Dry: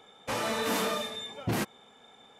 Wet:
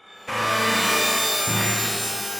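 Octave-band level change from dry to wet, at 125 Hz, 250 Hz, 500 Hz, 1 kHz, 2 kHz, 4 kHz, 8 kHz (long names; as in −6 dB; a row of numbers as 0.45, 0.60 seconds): +8.0, +5.0, +5.5, +10.5, +13.5, +13.0, +17.5 decibels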